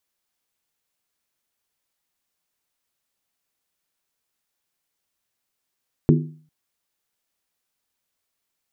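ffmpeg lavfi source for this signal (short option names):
-f lavfi -i "aevalsrc='0.299*pow(10,-3*t/0.47)*sin(2*PI*155*t)+0.211*pow(10,-3*t/0.372)*sin(2*PI*247.1*t)+0.15*pow(10,-3*t/0.322)*sin(2*PI*331.1*t)+0.106*pow(10,-3*t/0.31)*sin(2*PI*355.9*t)+0.075*pow(10,-3*t/0.289)*sin(2*PI*411.2*t)':d=0.4:s=44100"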